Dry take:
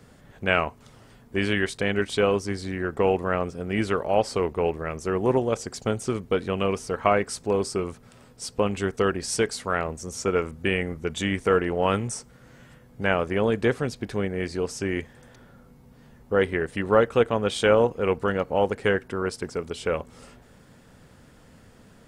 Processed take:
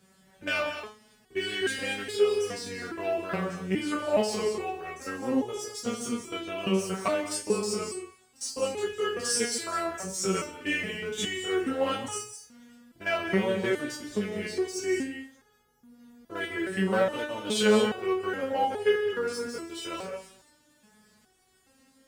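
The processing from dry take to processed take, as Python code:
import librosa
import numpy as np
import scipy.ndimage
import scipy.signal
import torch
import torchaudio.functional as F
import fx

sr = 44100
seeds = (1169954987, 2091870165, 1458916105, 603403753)

y = fx.spec_steps(x, sr, hold_ms=50)
y = fx.leveller(y, sr, passes=1)
y = scipy.signal.sosfilt(scipy.signal.butter(2, 46.0, 'highpass', fs=sr, output='sos'), y)
y = fx.high_shelf(y, sr, hz=3100.0, db=9.0)
y = fx.rev_gated(y, sr, seeds[0], gate_ms=240, shape='rising', drr_db=7.0)
y = fx.resonator_held(y, sr, hz=2.4, low_hz=190.0, high_hz=420.0)
y = F.gain(torch.from_numpy(y), 6.0).numpy()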